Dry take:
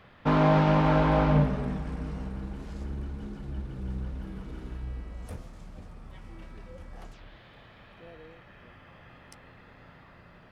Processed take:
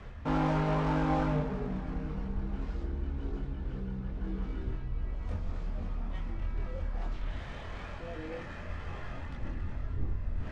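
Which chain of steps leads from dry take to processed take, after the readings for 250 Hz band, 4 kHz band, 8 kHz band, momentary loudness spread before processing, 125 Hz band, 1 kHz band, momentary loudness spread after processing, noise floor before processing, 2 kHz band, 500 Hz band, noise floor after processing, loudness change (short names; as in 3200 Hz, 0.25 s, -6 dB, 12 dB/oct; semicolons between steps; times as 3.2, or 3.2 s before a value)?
-5.0 dB, -5.5 dB, n/a, 25 LU, -5.0 dB, -6.0 dB, 12 LU, -54 dBFS, -5.0 dB, -7.0 dB, -42 dBFS, -8.0 dB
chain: switching dead time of 0.088 ms; wind noise 82 Hz -43 dBFS; in parallel at +2 dB: compressor, threshold -36 dBFS, peak gain reduction 17.5 dB; on the sum: flange 0.61 Hz, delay 2.9 ms, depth 1.9 ms, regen -86%; reverse; upward compressor, threshold -27 dBFS; reverse; air absorption 130 m; chorus voices 6, 0.22 Hz, delay 24 ms, depth 2.5 ms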